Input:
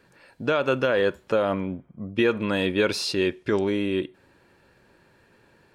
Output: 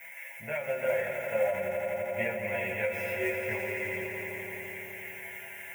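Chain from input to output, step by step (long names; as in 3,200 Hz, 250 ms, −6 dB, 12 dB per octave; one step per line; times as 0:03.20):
spike at every zero crossing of −21 dBFS
graphic EQ with 10 bands 125 Hz +11 dB, 250 Hz −12 dB, 500 Hz −3 dB, 1,000 Hz +5 dB, 2,000 Hz +11 dB, 4,000 Hz −6 dB, 8,000 Hz −6 dB
multi-voice chorus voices 6, 0.39 Hz, delay 23 ms, depth 4.4 ms
tuned comb filter 75 Hz, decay 0.26 s, harmonics odd, mix 90%
hollow resonant body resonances 310/580/2,100 Hz, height 17 dB, ringing for 20 ms
noise that follows the level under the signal 27 dB
phaser with its sweep stopped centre 1,200 Hz, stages 6
on a send: echo that builds up and dies away 85 ms, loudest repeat 5, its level −9 dB
on the sum: every ending faded ahead of time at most 110 dB per second
level −4.5 dB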